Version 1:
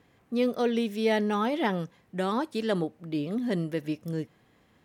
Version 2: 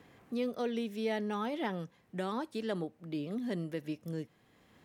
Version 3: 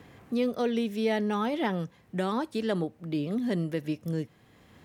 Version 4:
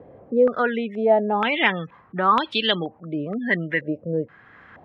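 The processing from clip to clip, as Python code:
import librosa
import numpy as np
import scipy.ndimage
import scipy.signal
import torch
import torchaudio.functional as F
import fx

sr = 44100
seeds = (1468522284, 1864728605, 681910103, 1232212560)

y1 = fx.band_squash(x, sr, depth_pct=40)
y1 = y1 * 10.0 ** (-8.0 / 20.0)
y2 = fx.peak_eq(y1, sr, hz=80.0, db=6.0, octaves=1.7)
y2 = y2 * 10.0 ** (6.0 / 20.0)
y3 = fx.tilt_shelf(y2, sr, db=-6.5, hz=970.0)
y3 = fx.spec_gate(y3, sr, threshold_db=-25, keep='strong')
y3 = fx.filter_held_lowpass(y3, sr, hz=2.1, low_hz=560.0, high_hz=3200.0)
y3 = y3 * 10.0 ** (7.0 / 20.0)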